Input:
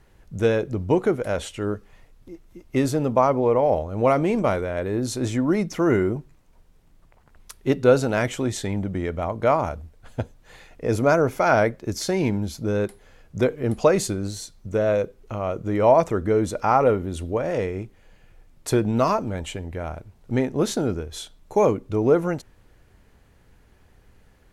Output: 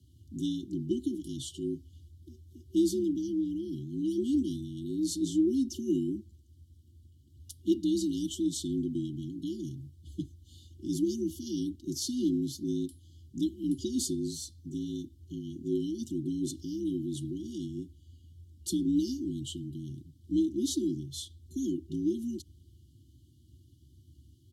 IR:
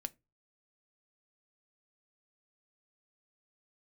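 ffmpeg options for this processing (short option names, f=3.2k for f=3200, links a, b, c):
-af "afftfilt=real='re*(1-between(b*sr/4096,320,2800))':imag='im*(1-between(b*sr/4096,320,2800))':win_size=4096:overlap=0.75,aecho=1:1:4:0.59,afreqshift=60,volume=-5.5dB"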